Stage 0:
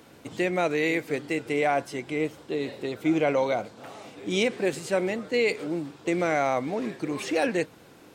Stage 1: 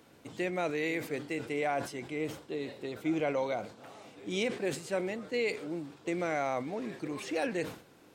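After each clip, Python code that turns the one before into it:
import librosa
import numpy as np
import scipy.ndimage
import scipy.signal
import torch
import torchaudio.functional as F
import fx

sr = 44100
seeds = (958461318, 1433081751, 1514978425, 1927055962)

y = fx.sustainer(x, sr, db_per_s=120.0)
y = F.gain(torch.from_numpy(y), -7.5).numpy()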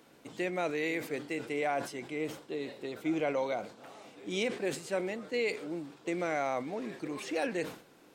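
y = fx.peak_eq(x, sr, hz=80.0, db=-11.5, octaves=1.1)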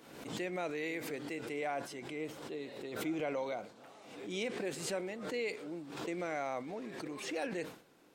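y = fx.pre_swell(x, sr, db_per_s=56.0)
y = F.gain(torch.from_numpy(y), -5.5).numpy()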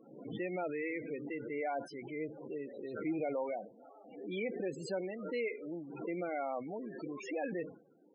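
y = fx.spec_topn(x, sr, count=16)
y = F.gain(torch.from_numpy(y), 1.0).numpy()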